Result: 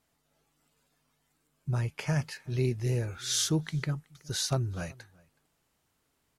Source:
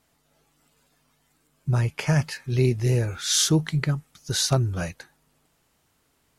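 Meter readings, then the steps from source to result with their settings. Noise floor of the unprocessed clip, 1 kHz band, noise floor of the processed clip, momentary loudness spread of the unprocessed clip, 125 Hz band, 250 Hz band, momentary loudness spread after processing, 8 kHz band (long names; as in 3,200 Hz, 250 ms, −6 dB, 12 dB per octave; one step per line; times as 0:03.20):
−69 dBFS, −7.5 dB, −76 dBFS, 9 LU, −7.5 dB, −7.5 dB, 9 LU, −7.5 dB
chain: slap from a distant wall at 64 metres, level −25 dB
level −7.5 dB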